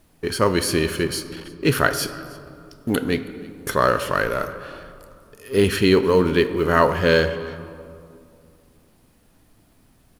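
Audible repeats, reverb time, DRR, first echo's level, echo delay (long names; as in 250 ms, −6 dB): 1, 2.4 s, 10.5 dB, −23.0 dB, 323 ms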